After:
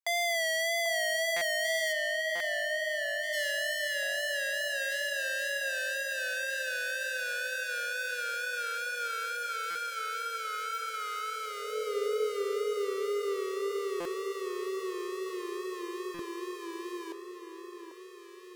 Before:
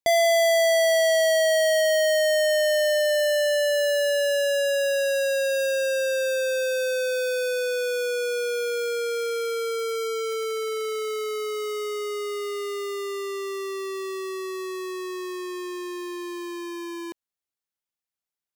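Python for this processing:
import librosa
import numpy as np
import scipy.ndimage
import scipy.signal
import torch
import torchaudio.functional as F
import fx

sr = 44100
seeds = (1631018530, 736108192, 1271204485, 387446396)

y = fx.bandpass_edges(x, sr, low_hz=130.0, high_hz=fx.line((1.92, 3200.0), (3.32, 2100.0)), at=(1.92, 3.32), fade=0.02)
y = fx.wow_flutter(y, sr, seeds[0], rate_hz=2.1, depth_cents=55.0)
y = fx.echo_alternate(y, sr, ms=792, hz=1500.0, feedback_pct=68, wet_db=-6.0)
y = fx.filter_sweep_highpass(y, sr, from_hz=1200.0, to_hz=480.0, start_s=11.29, end_s=11.92, q=2.5)
y = fx.buffer_glitch(y, sr, at_s=(1.36, 2.35, 9.7, 14.0, 16.14), block=256, repeats=8)
y = F.gain(torch.from_numpy(y), -7.0).numpy()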